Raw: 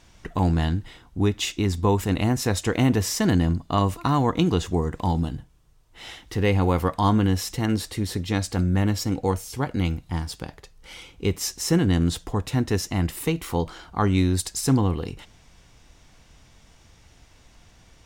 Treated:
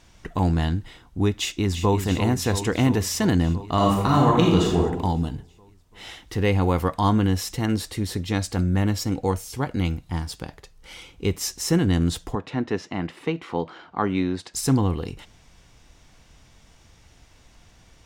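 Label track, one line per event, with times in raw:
1.310000	1.990000	delay throw 340 ms, feedback 75%, level −8.5 dB
3.740000	4.790000	thrown reverb, RT60 1 s, DRR −2.5 dB
12.350000	14.540000	band-pass filter 190–3,000 Hz

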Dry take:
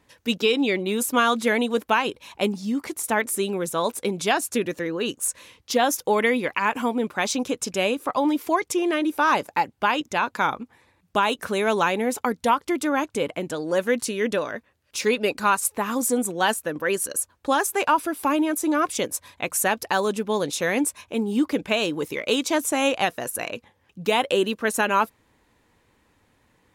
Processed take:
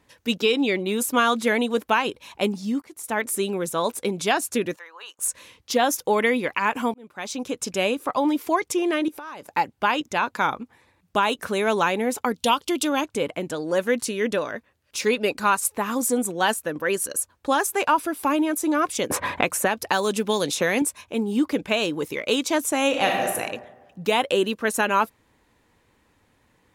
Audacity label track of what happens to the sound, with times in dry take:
2.820000	3.300000	fade in, from −23.5 dB
4.760000	5.190000	four-pole ladder high-pass 820 Hz, resonance 55%
6.940000	7.710000	fade in
9.080000	9.500000	downward compressor 16 to 1, threshold −33 dBFS
12.350000	13.010000	high shelf with overshoot 2,400 Hz +6 dB, Q 3
19.100000	20.820000	multiband upward and downward compressor depth 100%
22.880000	23.340000	thrown reverb, RT60 1.2 s, DRR −0.5 dB

